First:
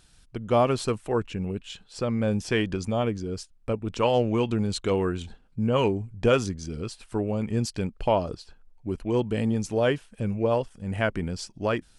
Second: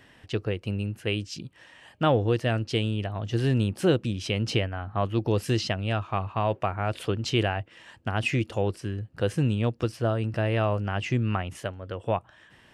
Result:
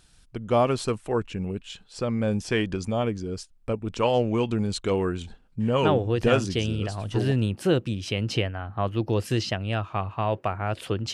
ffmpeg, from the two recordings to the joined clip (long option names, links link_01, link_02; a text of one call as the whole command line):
ffmpeg -i cue0.wav -i cue1.wav -filter_complex "[0:a]apad=whole_dur=11.13,atrim=end=11.13,atrim=end=7.32,asetpts=PTS-STARTPTS[link_01];[1:a]atrim=start=1.78:end=7.31,asetpts=PTS-STARTPTS[link_02];[link_01][link_02]acrossfade=duration=1.72:curve1=log:curve2=log" out.wav